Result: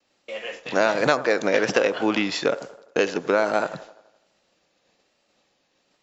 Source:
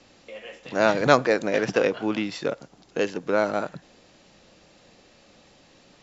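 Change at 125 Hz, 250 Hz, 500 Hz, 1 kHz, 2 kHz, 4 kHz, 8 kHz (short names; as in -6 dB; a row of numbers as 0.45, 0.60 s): -3.0 dB, +0.5 dB, +1.5 dB, +0.5 dB, +3.0 dB, +4.0 dB, n/a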